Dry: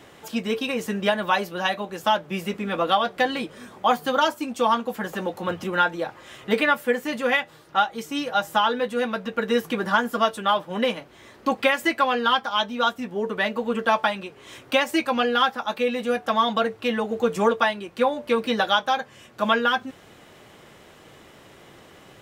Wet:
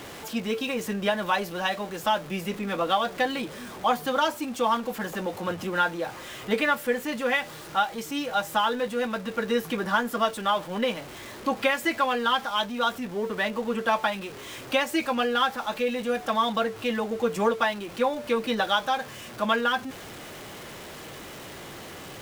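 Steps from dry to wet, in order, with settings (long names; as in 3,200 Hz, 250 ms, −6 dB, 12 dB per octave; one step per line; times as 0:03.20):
converter with a step at zero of −33.5 dBFS
level −4 dB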